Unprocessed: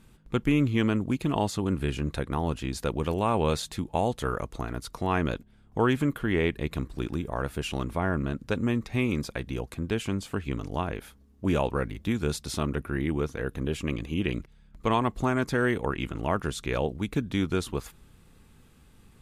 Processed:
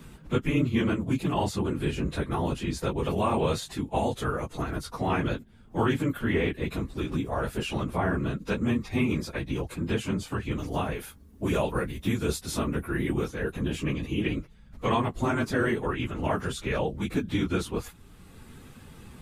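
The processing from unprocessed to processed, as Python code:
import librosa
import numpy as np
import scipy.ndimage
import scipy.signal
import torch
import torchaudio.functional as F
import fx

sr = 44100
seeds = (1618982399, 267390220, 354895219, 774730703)

y = fx.phase_scramble(x, sr, seeds[0], window_ms=50)
y = fx.high_shelf(y, sr, hz=8100.0, db=10.0, at=(10.58, 13.28))
y = fx.band_squash(y, sr, depth_pct=40)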